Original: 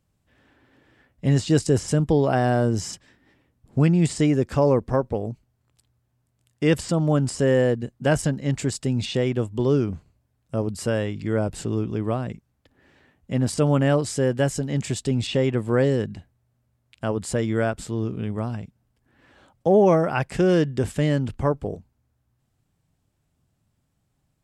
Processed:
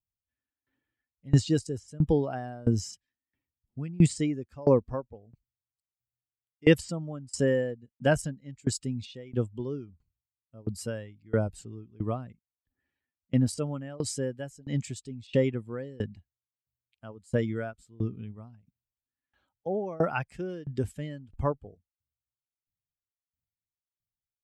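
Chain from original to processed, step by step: per-bin expansion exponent 1.5; dB-ramp tremolo decaying 1.5 Hz, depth 26 dB; gain +3.5 dB

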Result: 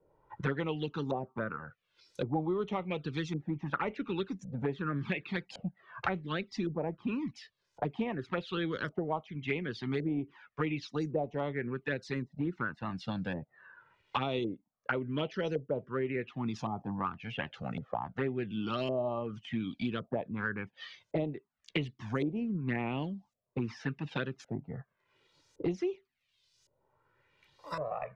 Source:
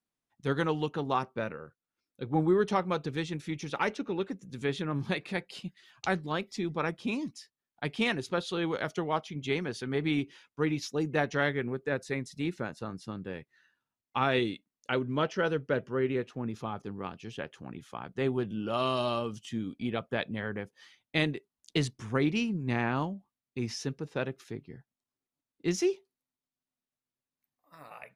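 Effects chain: LFO low-pass saw up 0.9 Hz 530–6700 Hz; envelope flanger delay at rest 2.1 ms, full sweep at -23 dBFS; three-band squash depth 100%; gain -3 dB

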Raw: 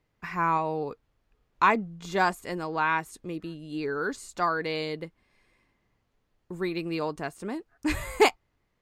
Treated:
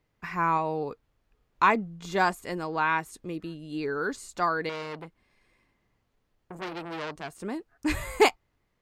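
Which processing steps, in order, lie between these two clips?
4.69–7.37 core saturation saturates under 2300 Hz

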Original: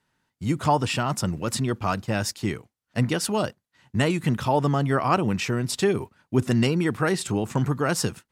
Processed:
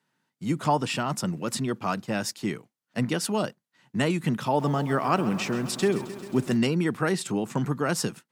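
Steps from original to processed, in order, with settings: HPF 150 Hz 24 dB/oct; tone controls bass +3 dB, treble 0 dB; 4.46–6.57 lo-fi delay 0.133 s, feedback 80%, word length 7-bit, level -14.5 dB; gain -2.5 dB

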